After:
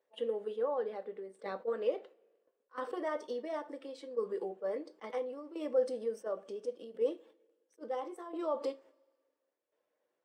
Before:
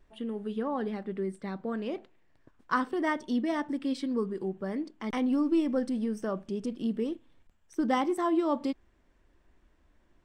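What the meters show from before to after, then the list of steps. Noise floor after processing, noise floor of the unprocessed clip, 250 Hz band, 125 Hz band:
-84 dBFS, -66 dBFS, -17.0 dB, under -20 dB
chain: bin magnitudes rounded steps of 15 dB; gate -52 dBFS, range -17 dB; dynamic EQ 1200 Hz, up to +4 dB, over -50 dBFS, Q 3.9; limiter -25 dBFS, peak gain reduction 11.5 dB; compressor 6:1, threshold -38 dBFS, peak gain reduction 9.5 dB; tremolo saw down 0.72 Hz, depth 70%; resonant high-pass 500 Hz, resonance Q 4.9; two-slope reverb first 0.21 s, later 1.6 s, from -27 dB, DRR 8.5 dB; attack slew limiter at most 440 dB/s; gain +3.5 dB

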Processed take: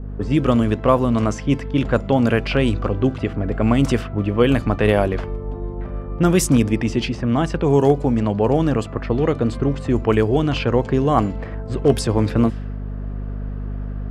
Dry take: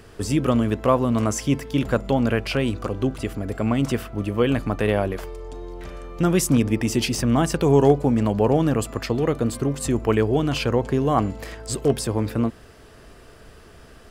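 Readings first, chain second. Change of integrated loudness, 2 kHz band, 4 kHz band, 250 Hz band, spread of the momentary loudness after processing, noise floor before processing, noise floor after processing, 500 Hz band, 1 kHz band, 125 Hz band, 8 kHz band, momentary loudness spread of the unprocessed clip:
+3.0 dB, +3.0 dB, +1.0 dB, +3.0 dB, 13 LU, -47 dBFS, -30 dBFS, +3.0 dB, +3.0 dB, +3.5 dB, -2.0 dB, 10 LU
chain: hum 50 Hz, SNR 11 dB; vocal rider within 4 dB 2 s; low-pass opened by the level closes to 570 Hz, open at -13.5 dBFS; gain +2.5 dB

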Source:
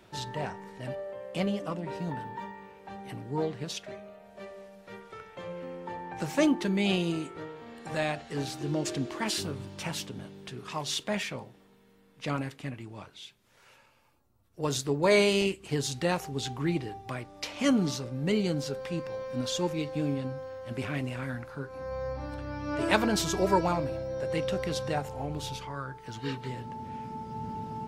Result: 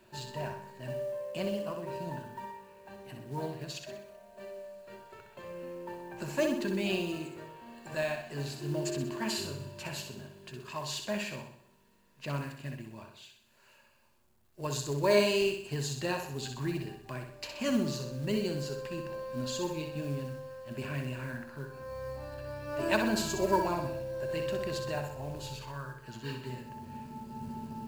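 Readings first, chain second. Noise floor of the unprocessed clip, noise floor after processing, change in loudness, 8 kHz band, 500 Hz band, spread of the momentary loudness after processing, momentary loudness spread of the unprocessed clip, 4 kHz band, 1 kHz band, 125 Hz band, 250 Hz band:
-61 dBFS, -64 dBFS, -3.5 dB, -3.5 dB, -2.0 dB, 17 LU, 17 LU, -4.0 dB, -4.0 dB, -3.0 dB, -5.0 dB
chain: ripple EQ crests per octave 1.4, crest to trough 9 dB; companded quantiser 6-bit; flutter echo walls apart 10.8 m, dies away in 0.59 s; gain -6 dB

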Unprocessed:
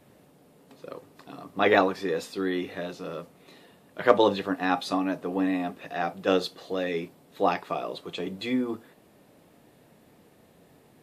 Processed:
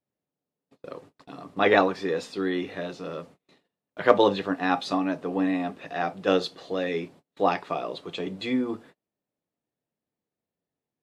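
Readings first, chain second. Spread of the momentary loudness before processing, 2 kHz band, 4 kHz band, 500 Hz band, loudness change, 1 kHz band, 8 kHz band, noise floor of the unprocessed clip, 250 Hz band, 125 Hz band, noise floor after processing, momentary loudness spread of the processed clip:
20 LU, +1.0 dB, +1.0 dB, +1.0 dB, +1.0 dB, +1.0 dB, n/a, -58 dBFS, +1.0 dB, +1.0 dB, under -85 dBFS, 20 LU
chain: gate -49 dBFS, range -33 dB; LPF 7400 Hz 12 dB/oct; gain +1 dB

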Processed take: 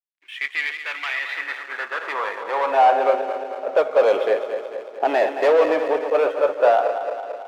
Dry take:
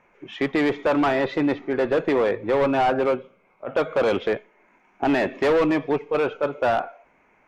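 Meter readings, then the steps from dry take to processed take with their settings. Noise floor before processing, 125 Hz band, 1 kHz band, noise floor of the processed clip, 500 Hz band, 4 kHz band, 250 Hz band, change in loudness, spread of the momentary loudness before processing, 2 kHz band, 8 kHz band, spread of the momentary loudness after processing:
-61 dBFS, under -20 dB, +5.0 dB, -40 dBFS, +3.0 dB, +1.5 dB, -11.5 dB, +2.0 dB, 8 LU, +3.5 dB, n/a, 12 LU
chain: regenerating reverse delay 0.111 s, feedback 78%, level -9 dB; backlash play -42.5 dBFS; high-pass sweep 2100 Hz -> 550 Hz, 1.2–3.24; gain -1 dB

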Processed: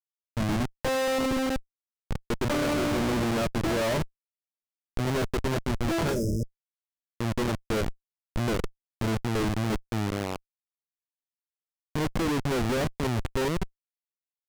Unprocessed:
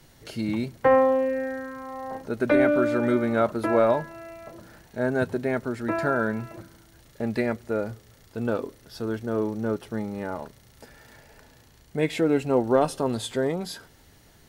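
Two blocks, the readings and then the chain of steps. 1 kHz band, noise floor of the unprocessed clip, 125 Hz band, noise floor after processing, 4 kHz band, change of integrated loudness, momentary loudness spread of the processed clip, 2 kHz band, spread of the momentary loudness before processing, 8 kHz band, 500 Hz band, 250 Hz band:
-4.0 dB, -55 dBFS, +4.0 dB, under -85 dBFS, +5.5 dB, -3.5 dB, 10 LU, -2.5 dB, 17 LU, n/a, -6.5 dB, -2.5 dB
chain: median filter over 5 samples; bell 89 Hz +5.5 dB 1.8 oct; Schmitt trigger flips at -26 dBFS; high shelf 11000 Hz -8 dB; spectral repair 6.12–6.53, 640–4900 Hz both

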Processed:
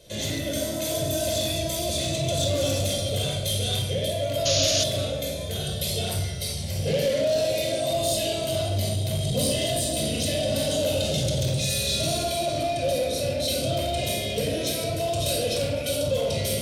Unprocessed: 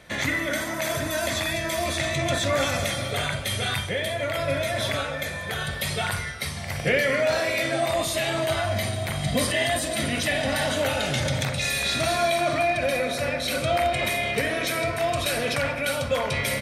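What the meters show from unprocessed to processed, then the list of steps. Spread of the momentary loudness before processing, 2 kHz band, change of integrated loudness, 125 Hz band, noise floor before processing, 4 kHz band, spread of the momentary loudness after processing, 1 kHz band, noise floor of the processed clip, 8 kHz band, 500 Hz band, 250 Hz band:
5 LU, -11.5 dB, -0.5 dB, +3.0 dB, -32 dBFS, +2.0 dB, 4 LU, -6.0 dB, -30 dBFS, +3.5 dB, +0.5 dB, 0.0 dB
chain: shoebox room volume 2200 m³, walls furnished, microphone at 5.1 m; soft clip -14.5 dBFS, distortion -15 dB; tone controls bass -3 dB, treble +4 dB; painted sound noise, 4.45–4.84, 1100–7000 Hz -20 dBFS; band shelf 1400 Hz -16 dB; gain -2.5 dB

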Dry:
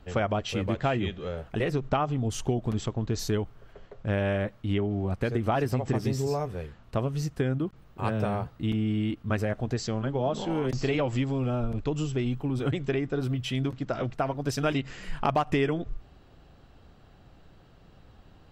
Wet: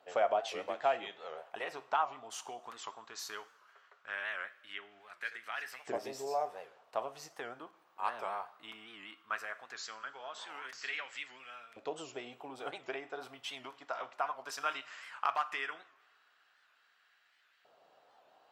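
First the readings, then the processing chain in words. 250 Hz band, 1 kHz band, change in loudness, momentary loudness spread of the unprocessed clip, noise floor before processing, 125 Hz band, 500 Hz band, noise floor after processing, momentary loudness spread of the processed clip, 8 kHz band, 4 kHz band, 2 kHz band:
-26.0 dB, -3.5 dB, -10.0 dB, 5 LU, -55 dBFS, -39.0 dB, -10.5 dB, -70 dBFS, 14 LU, -7.0 dB, -6.5 dB, -3.0 dB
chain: LFO high-pass saw up 0.17 Hz 610–1900 Hz; two-slope reverb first 0.47 s, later 1.6 s, from -17 dB, DRR 10.5 dB; record warp 78 rpm, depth 160 cents; gain -7.5 dB

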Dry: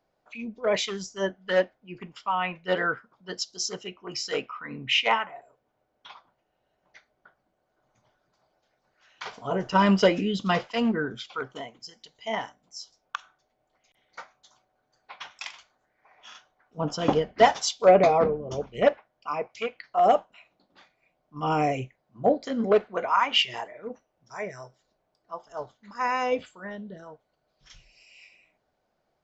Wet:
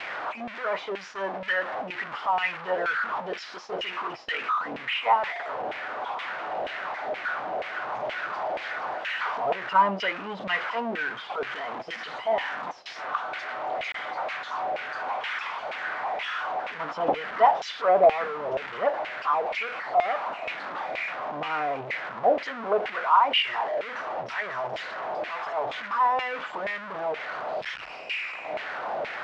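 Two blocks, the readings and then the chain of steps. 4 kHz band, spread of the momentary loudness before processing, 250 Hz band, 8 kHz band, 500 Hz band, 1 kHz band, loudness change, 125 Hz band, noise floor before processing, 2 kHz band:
-2.5 dB, 20 LU, -10.5 dB, n/a, -2.0 dB, +3.0 dB, -2.5 dB, -13.0 dB, -76 dBFS, +4.5 dB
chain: zero-crossing step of -21 dBFS; LFO band-pass saw down 2.1 Hz 590–2400 Hz; LPF 4000 Hz 12 dB/oct; gate with hold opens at -34 dBFS; gain +2.5 dB

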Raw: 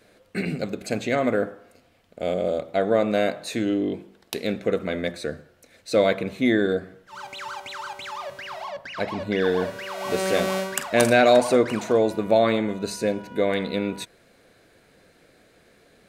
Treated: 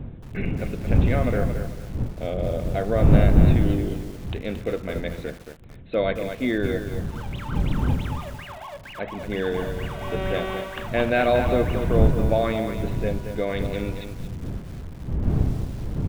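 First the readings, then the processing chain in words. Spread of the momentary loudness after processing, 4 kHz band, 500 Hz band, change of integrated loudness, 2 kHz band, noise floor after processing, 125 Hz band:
15 LU, -5.5 dB, -3.5 dB, -0.5 dB, -3.0 dB, -40 dBFS, +12.5 dB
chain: wind noise 130 Hz -21 dBFS; downsampling 8000 Hz; lo-fi delay 0.224 s, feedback 35%, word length 6-bit, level -7.5 dB; gain -4 dB

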